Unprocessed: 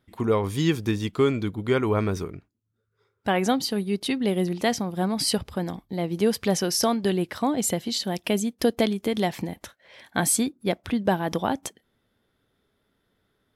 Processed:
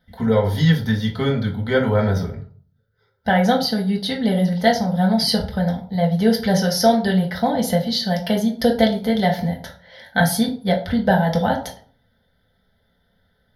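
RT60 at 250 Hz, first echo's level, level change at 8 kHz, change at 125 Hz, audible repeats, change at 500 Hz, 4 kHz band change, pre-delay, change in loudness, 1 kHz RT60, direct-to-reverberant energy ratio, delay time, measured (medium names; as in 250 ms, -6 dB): 0.50 s, no echo, -3.5 dB, +9.0 dB, no echo, +5.0 dB, +5.5 dB, 4 ms, +6.0 dB, 0.50 s, -1.0 dB, no echo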